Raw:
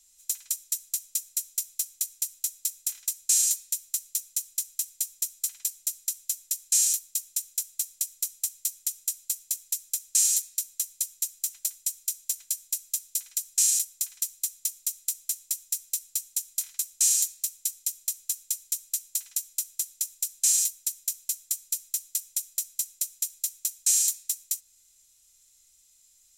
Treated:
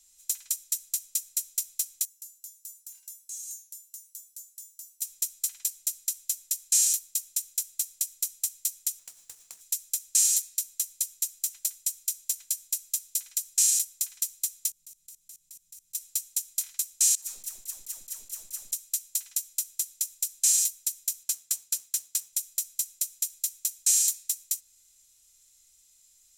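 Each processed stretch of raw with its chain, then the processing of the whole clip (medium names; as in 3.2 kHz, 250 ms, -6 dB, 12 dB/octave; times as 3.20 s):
2.05–5.02 s: treble shelf 7.3 kHz +9.5 dB + compression, threshold -21 dBFS + feedback comb 310 Hz, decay 0.34 s, harmonics odd, mix 90%
8.99–9.61 s: median filter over 3 samples + compression 8:1, threshold -41 dBFS + hum notches 50/100/150/200/250/300/350/400/450 Hz
14.70–15.95 s: resonant low shelf 270 Hz +14 dB, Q 3 + level held to a coarse grid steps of 23 dB
17.15–18.73 s: partial rectifier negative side -3 dB + compressor with a negative ratio -35 dBFS, ratio -0.5 + phase dispersion lows, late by 118 ms, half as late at 740 Hz
21.23–22.33 s: high-pass 68 Hz + treble shelf 11 kHz -7 dB + waveshaping leveller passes 1
whole clip: none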